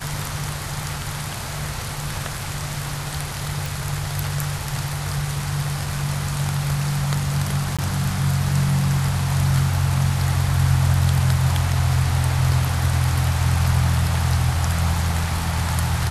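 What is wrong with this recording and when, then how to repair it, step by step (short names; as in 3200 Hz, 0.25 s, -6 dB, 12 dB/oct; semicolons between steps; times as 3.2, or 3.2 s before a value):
3.66 pop
7.77–7.79 gap 16 ms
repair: de-click; interpolate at 7.77, 16 ms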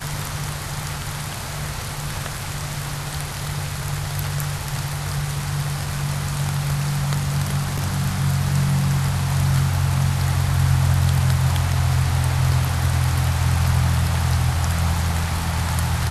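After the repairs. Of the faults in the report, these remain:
none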